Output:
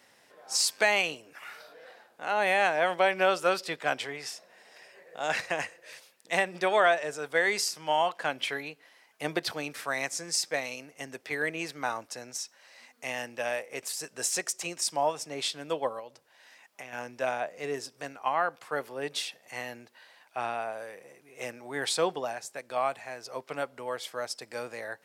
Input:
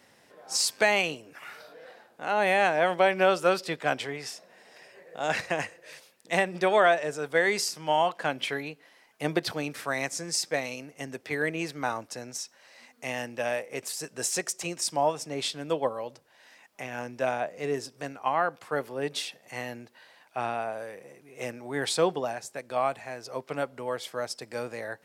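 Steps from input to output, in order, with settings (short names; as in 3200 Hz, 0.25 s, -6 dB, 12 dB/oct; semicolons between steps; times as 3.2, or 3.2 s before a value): low shelf 390 Hz -8.5 dB; 15.99–16.93 compressor, threshold -40 dBFS, peak gain reduction 6.5 dB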